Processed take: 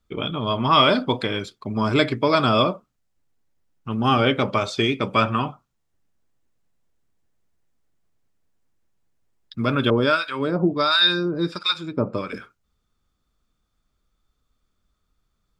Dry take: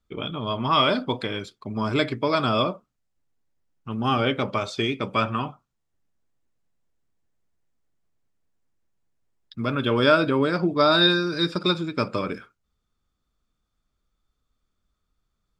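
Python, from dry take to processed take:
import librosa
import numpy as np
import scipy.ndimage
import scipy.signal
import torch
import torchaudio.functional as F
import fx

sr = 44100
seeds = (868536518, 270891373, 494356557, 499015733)

y = fx.harmonic_tremolo(x, sr, hz=1.4, depth_pct=100, crossover_hz=1000.0, at=(9.9, 12.33))
y = y * 10.0 ** (4.0 / 20.0)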